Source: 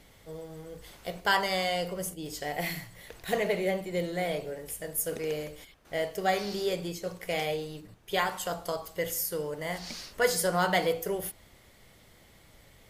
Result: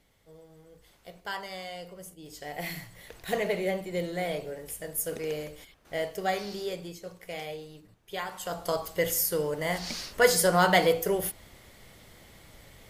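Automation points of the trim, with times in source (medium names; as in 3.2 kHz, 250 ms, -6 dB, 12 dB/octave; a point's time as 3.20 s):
2.05 s -10.5 dB
2.84 s -0.5 dB
6.08 s -0.5 dB
7.15 s -7 dB
8.25 s -7 dB
8.75 s +4.5 dB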